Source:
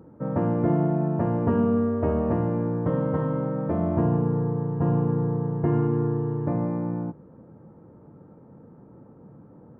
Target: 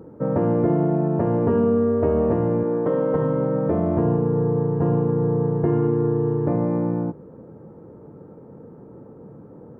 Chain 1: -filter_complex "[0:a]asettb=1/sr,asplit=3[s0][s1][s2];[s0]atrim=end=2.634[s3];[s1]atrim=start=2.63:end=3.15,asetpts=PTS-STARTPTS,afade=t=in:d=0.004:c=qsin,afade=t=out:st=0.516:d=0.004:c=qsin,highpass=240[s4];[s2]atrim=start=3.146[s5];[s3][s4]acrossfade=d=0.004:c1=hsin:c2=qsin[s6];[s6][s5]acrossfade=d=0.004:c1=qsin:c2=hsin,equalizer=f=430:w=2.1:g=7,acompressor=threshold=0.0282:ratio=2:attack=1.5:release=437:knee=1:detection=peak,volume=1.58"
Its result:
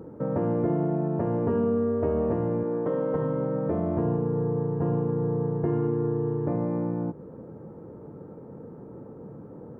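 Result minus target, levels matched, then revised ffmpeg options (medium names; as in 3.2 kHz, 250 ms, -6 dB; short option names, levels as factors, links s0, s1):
compression: peak gain reduction +6 dB
-filter_complex "[0:a]asettb=1/sr,asplit=3[s0][s1][s2];[s0]atrim=end=2.634[s3];[s1]atrim=start=2.63:end=3.15,asetpts=PTS-STARTPTS,afade=t=in:d=0.004:c=qsin,afade=t=out:st=0.516:d=0.004:c=qsin,highpass=240[s4];[s2]atrim=start=3.146[s5];[s3][s4]acrossfade=d=0.004:c1=hsin:c2=qsin[s6];[s6][s5]acrossfade=d=0.004:c1=qsin:c2=hsin,equalizer=f=430:w=2.1:g=7,acompressor=threshold=0.106:ratio=2:attack=1.5:release=437:knee=1:detection=peak,volume=1.58"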